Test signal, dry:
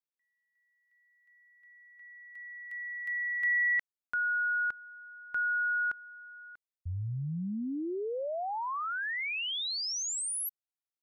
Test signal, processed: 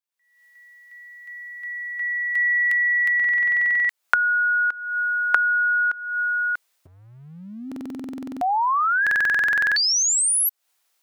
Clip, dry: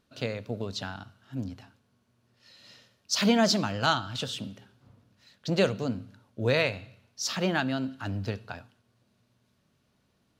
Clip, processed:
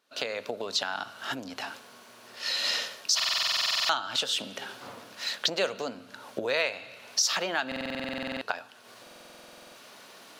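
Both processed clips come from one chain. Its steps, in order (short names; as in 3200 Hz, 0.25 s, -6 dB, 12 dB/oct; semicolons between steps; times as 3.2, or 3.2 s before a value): recorder AGC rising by 58 dB/s, up to +26 dB; HPF 550 Hz 12 dB/oct; stuck buffer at 3.15/7.67/9.02, samples 2048, times 15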